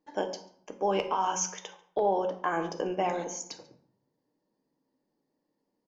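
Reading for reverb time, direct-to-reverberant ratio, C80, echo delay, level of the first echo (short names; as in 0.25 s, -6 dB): 0.65 s, 6.0 dB, 14.0 dB, 0.141 s, -22.5 dB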